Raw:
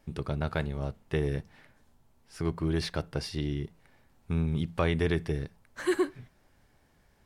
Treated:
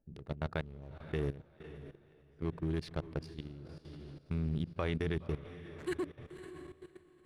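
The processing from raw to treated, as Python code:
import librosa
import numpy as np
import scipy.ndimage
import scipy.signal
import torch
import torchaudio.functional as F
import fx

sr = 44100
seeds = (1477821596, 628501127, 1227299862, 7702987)

y = fx.wiener(x, sr, points=41)
y = fx.echo_diffused(y, sr, ms=559, feedback_pct=47, wet_db=-11)
y = fx.level_steps(y, sr, step_db=15)
y = F.gain(torch.from_numpy(y), -3.0).numpy()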